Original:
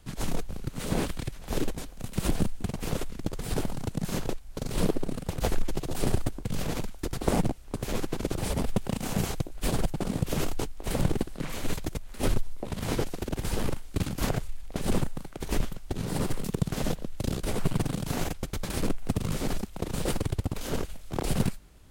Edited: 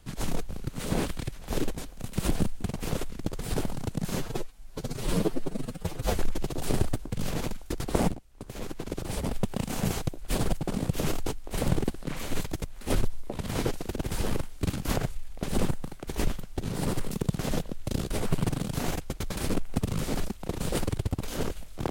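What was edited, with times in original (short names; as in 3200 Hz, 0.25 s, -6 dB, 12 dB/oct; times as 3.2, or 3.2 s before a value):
4.16–5.5 stretch 1.5×
7.45–8.99 fade in, from -13.5 dB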